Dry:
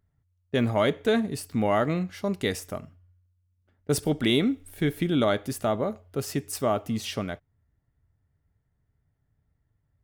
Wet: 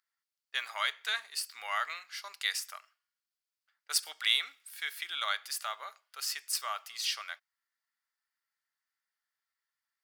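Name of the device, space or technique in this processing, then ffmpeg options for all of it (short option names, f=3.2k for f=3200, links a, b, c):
headphones lying on a table: -af "highpass=f=1.2k:w=0.5412,highpass=f=1.2k:w=1.3066,equalizer=f=4.7k:t=o:w=0.41:g=8"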